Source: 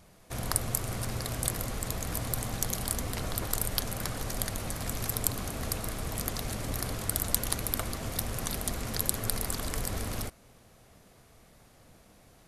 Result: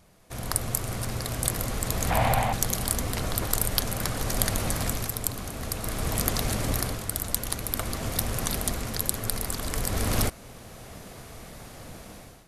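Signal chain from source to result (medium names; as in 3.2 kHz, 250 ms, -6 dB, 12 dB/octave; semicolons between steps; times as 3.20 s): 2.10–2.53 s: FFT filter 220 Hz 0 dB, 370 Hz -7 dB, 810 Hz +14 dB, 1.2 kHz +2 dB, 2.4 kHz +7 dB, 5.4 kHz -8 dB; level rider gain up to 15.5 dB; trim -1 dB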